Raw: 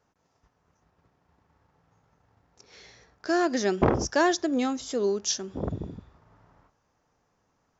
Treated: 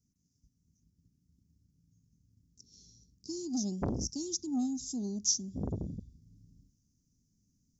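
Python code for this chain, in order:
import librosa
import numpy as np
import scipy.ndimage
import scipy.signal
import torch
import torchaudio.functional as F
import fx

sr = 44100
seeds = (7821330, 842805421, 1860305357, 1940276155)

y = scipy.signal.sosfilt(scipy.signal.ellip(3, 1.0, 60, [240.0, 5700.0], 'bandstop', fs=sr, output='sos'), x)
y = fx.rider(y, sr, range_db=10, speed_s=2.0)
y = fx.transformer_sat(y, sr, knee_hz=610.0)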